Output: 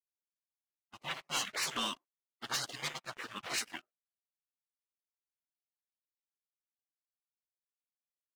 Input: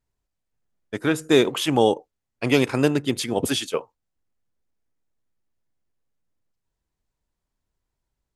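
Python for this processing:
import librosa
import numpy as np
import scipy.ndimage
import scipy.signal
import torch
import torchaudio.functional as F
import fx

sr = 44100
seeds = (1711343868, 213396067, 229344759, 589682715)

y = scipy.signal.sosfilt(scipy.signal.butter(2, 1000.0, 'highpass', fs=sr, output='sos'), x)
y = fx.spec_gate(y, sr, threshold_db=-20, keep='weak')
y = fx.env_lowpass(y, sr, base_hz=1400.0, full_db=-30.0)
y = fx.high_shelf(y, sr, hz=2900.0, db=fx.steps((0.0, 2.0), (3.55, -3.0)))
y = fx.leveller(y, sr, passes=3)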